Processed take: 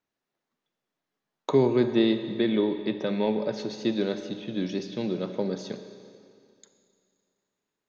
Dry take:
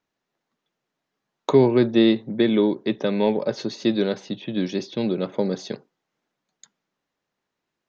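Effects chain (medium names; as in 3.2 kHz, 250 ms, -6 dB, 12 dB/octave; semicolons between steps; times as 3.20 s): Schroeder reverb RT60 2.4 s, combs from 29 ms, DRR 8.5 dB; trim -5.5 dB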